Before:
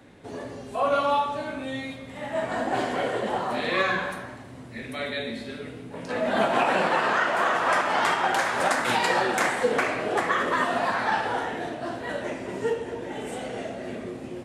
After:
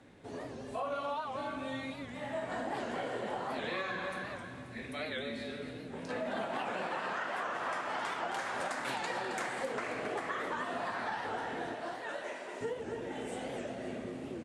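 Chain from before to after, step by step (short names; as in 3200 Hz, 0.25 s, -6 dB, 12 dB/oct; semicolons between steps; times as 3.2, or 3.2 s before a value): 11.74–12.61 HPF 530 Hz 12 dB/oct; feedback echo 0.267 s, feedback 38%, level -9.5 dB; compressor, threshold -27 dBFS, peak gain reduction 9.5 dB; LPF 11000 Hz 24 dB/oct; record warp 78 rpm, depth 160 cents; gain -6.5 dB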